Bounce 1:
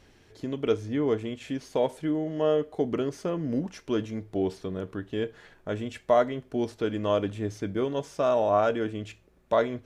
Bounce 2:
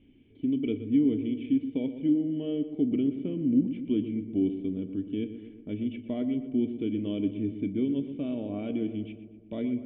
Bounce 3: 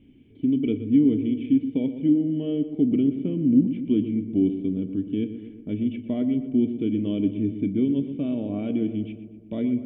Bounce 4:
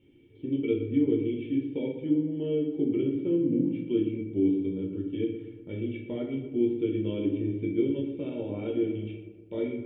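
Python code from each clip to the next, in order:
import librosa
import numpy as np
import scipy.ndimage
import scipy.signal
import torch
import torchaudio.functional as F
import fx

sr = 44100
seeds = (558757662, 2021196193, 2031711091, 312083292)

y1 = fx.dynamic_eq(x, sr, hz=1000.0, q=0.92, threshold_db=-33.0, ratio=4.0, max_db=-4)
y1 = fx.formant_cascade(y1, sr, vowel='i')
y1 = fx.echo_filtered(y1, sr, ms=121, feedback_pct=62, hz=1900.0, wet_db=-10.5)
y1 = F.gain(torch.from_numpy(y1), 8.0).numpy()
y2 = fx.peak_eq(y1, sr, hz=160.0, db=5.5, octaves=1.9)
y2 = F.gain(torch.from_numpy(y2), 2.0).numpy()
y3 = fx.highpass(y2, sr, hz=170.0, slope=6)
y3 = y3 + 0.67 * np.pad(y3, (int(2.2 * sr / 1000.0), 0))[:len(y3)]
y3 = fx.room_shoebox(y3, sr, seeds[0], volume_m3=68.0, walls='mixed', distance_m=0.82)
y3 = F.gain(torch.from_numpy(y3), -5.5).numpy()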